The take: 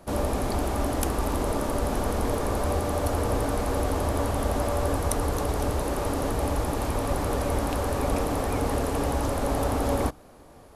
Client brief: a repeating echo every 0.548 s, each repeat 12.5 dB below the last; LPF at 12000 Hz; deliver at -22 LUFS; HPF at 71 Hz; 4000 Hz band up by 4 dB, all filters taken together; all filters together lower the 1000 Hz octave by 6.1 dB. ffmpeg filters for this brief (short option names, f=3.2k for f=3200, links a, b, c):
-af "highpass=71,lowpass=12k,equalizer=f=1k:t=o:g=-8.5,equalizer=f=4k:t=o:g=5.5,aecho=1:1:548|1096|1644:0.237|0.0569|0.0137,volume=7dB"